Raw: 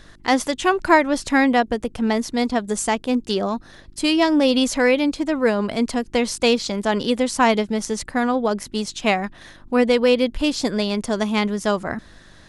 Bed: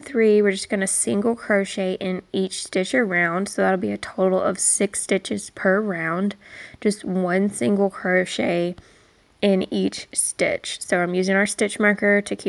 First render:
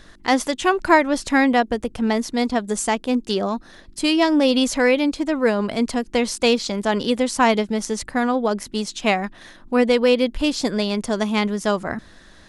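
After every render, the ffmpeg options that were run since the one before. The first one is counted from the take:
-af "bandreject=f=50:t=h:w=4,bandreject=f=100:t=h:w=4,bandreject=f=150:t=h:w=4"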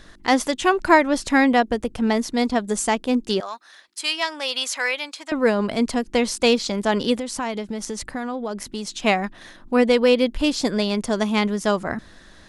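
-filter_complex "[0:a]asettb=1/sr,asplit=3[s0][s1][s2];[s0]atrim=end=3.404[s3];[s1]atrim=start=3.4:end=5.32,asetpts=PTS-STARTPTS,afade=t=in:d=0.004:c=qsin,afade=t=out:st=1.916:d=0.004:c=qsin,highpass=1100[s4];[s2]atrim=start=5.316[s5];[s3][s4]acrossfade=d=0.004:c1=hsin:c2=qsin[s6];[s6][s5]acrossfade=d=0.004:c1=qsin:c2=hsin,asettb=1/sr,asplit=3[s7][s8][s9];[s7]atrim=end=7.184[s10];[s8]atrim=start=7.18:end=9.01,asetpts=PTS-STARTPTS,afade=t=in:d=0.004:c=qsin,afade=t=out:st=1.826:d=0.004:c=qsin,acompressor=threshold=0.0501:ratio=3:attack=3.2:release=140:knee=1:detection=peak[s11];[s9]atrim=start=9.006[s12];[s10][s11]acrossfade=d=0.004:c1=hsin:c2=qsin[s13];[s13][s12]acrossfade=d=0.004:c1=qsin:c2=hsin"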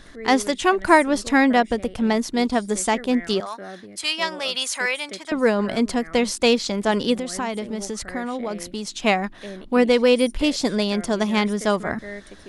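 -filter_complex "[1:a]volume=0.126[s0];[0:a][s0]amix=inputs=2:normalize=0"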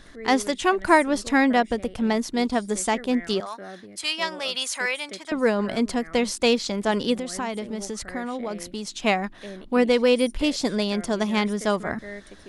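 -af "volume=0.75"

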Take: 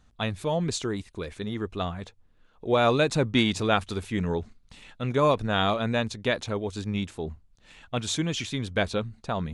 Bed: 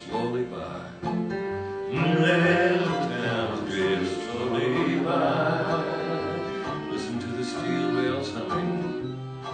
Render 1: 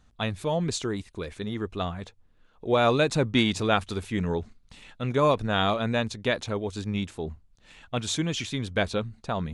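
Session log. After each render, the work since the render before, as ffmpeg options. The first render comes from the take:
-af anull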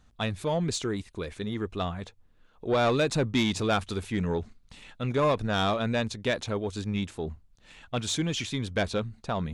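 -af "asoftclip=type=tanh:threshold=0.133"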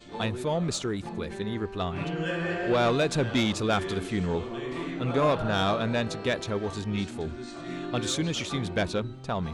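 -filter_complex "[1:a]volume=0.335[s0];[0:a][s0]amix=inputs=2:normalize=0"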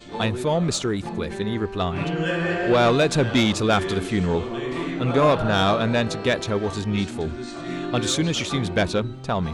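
-af "volume=2"

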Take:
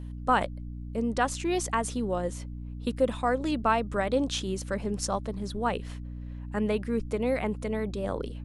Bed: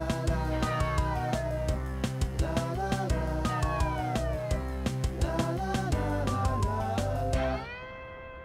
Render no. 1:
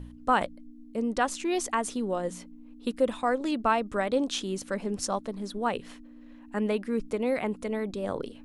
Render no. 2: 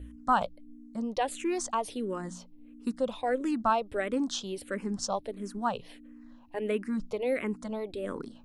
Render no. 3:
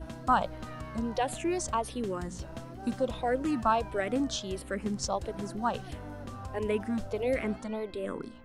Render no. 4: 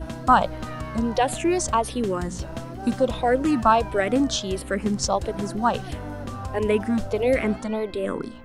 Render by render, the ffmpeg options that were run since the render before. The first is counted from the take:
-af "bandreject=f=60:t=h:w=4,bandreject=f=120:t=h:w=4,bandreject=f=180:t=h:w=4"
-filter_complex "[0:a]asplit=2[s0][s1];[s1]afreqshift=-1.5[s2];[s0][s2]amix=inputs=2:normalize=1"
-filter_complex "[1:a]volume=0.224[s0];[0:a][s0]amix=inputs=2:normalize=0"
-af "volume=2.66"

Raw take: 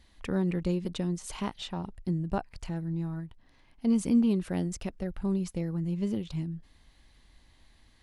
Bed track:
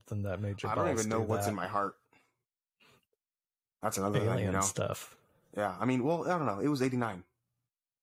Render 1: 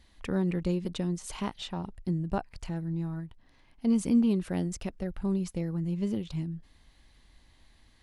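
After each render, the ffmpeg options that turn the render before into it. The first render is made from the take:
-af anull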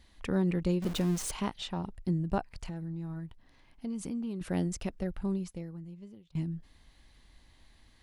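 -filter_complex "[0:a]asettb=1/sr,asplit=3[s0][s1][s2];[s0]atrim=end=0.824[s3];[s1]atrim=start=0.82:end=1.31,asetpts=PTS-STARTPTS,afade=t=in:d=0.004:c=qsin,afade=t=out:st=0.486:d=0.004:c=qsin,aeval=exprs='val(0)+0.5*0.0178*sgn(val(0))':c=same[s4];[s2]atrim=start=1.306[s5];[s3][s4]acrossfade=d=0.004:c1=hsin:c2=qsin[s6];[s6][s5]acrossfade=d=0.004:c1=qsin:c2=hsin,asettb=1/sr,asplit=3[s7][s8][s9];[s7]atrim=end=2.524[s10];[s8]atrim=start=2.52:end=4.41,asetpts=PTS-STARTPTS,afade=t=in:d=0.004:c=qsin,afade=t=out:st=1.886:d=0.004:c=qsin,acompressor=threshold=0.0178:ratio=4:attack=3.2:release=140:knee=1:detection=peak[s11];[s9]atrim=start=4.406[s12];[s10][s11]acrossfade=d=0.004:c1=hsin:c2=qsin[s13];[s13][s12]acrossfade=d=0.004:c1=qsin:c2=hsin,asplit=2[s14][s15];[s14]atrim=end=6.35,asetpts=PTS-STARTPTS,afade=t=out:st=5.09:d=1.26:c=qua:silence=0.0707946[s16];[s15]atrim=start=6.35,asetpts=PTS-STARTPTS,afade=t=in:d=0.004:c=hsin:silence=0.0707946[s17];[s16][s17]concat=n=2:v=0:a=1"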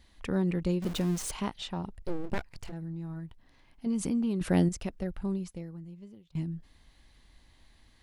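-filter_complex "[0:a]asplit=3[s0][s1][s2];[s0]afade=t=out:st=1.99:d=0.02[s3];[s1]aeval=exprs='abs(val(0))':c=same,afade=t=in:st=1.99:d=0.02,afade=t=out:st=2.71:d=0.02[s4];[s2]afade=t=in:st=2.71:d=0.02[s5];[s3][s4][s5]amix=inputs=3:normalize=0,asettb=1/sr,asplit=3[s6][s7][s8];[s6]atrim=end=3.864[s9];[s7]atrim=start=3.86:end=4.69,asetpts=PTS-STARTPTS,afade=t=in:d=0.004:c=qsin,afade=t=out:st=0.826:d=0.004:c=qsin,acontrast=68[s10];[s8]atrim=start=4.686[s11];[s9][s10]acrossfade=d=0.004:c1=hsin:c2=qsin[s12];[s12][s11]acrossfade=d=0.004:c1=qsin:c2=hsin"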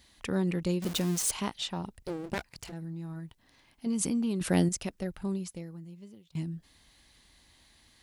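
-af "highpass=f=90:p=1,highshelf=f=3400:g=9"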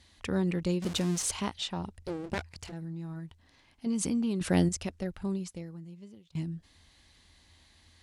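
-af "lowpass=9100,equalizer=f=83:w=7.9:g=13"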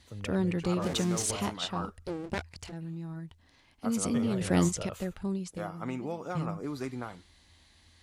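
-filter_complex "[1:a]volume=0.501[s0];[0:a][s0]amix=inputs=2:normalize=0"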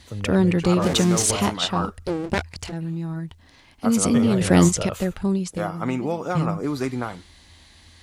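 -af "volume=3.35,alimiter=limit=0.708:level=0:latency=1"

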